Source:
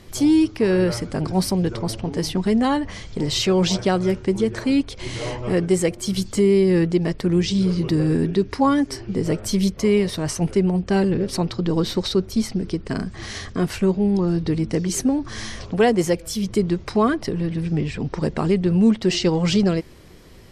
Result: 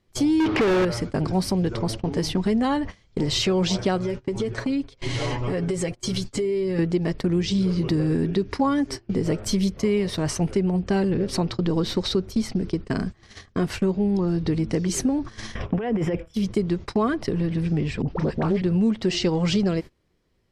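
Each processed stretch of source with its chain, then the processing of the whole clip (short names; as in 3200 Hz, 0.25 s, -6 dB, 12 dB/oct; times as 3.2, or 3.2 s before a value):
0.4–0.85 air absorption 310 m + overdrive pedal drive 37 dB, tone 3200 Hz, clips at -9.5 dBFS
3.97–6.79 LPF 10000 Hz + comb 7.3 ms, depth 59% + compressor 8:1, threshold -22 dBFS
15.55–16.34 polynomial smoothing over 25 samples + negative-ratio compressor -23 dBFS
18.02–18.62 air absorption 70 m + dispersion highs, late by 59 ms, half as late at 730 Hz + Doppler distortion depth 0.18 ms
whole clip: gate -29 dBFS, range -25 dB; high shelf 9200 Hz -9 dB; compressor 2.5:1, threshold -23 dBFS; gain +2 dB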